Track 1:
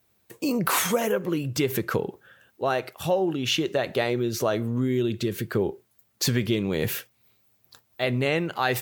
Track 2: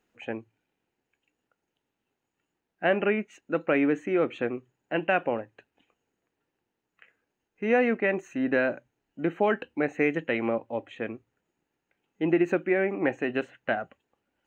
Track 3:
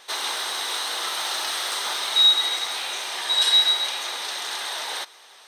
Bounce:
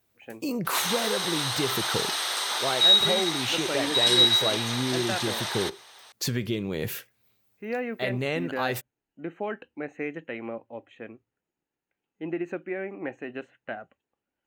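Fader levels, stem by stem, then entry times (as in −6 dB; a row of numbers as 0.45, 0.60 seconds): −4.5, −8.0, −1.5 decibels; 0.00, 0.00, 0.65 seconds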